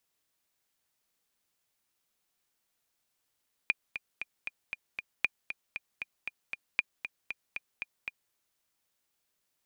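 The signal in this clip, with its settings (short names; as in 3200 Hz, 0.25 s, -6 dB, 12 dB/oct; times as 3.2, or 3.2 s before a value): metronome 233 bpm, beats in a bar 6, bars 3, 2420 Hz, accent 10.5 dB -12 dBFS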